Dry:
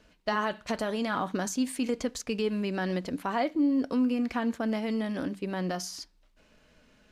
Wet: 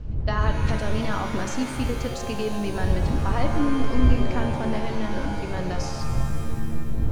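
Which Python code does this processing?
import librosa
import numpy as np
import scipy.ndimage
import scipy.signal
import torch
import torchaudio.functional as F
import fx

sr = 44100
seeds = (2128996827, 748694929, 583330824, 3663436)

y = fx.dmg_wind(x, sr, seeds[0], corner_hz=81.0, level_db=-28.0)
y = scipy.signal.sosfilt(scipy.signal.butter(2, 7300.0, 'lowpass', fs=sr, output='sos'), y)
y = fx.rev_shimmer(y, sr, seeds[1], rt60_s=2.4, semitones=7, shimmer_db=-2, drr_db=6.0)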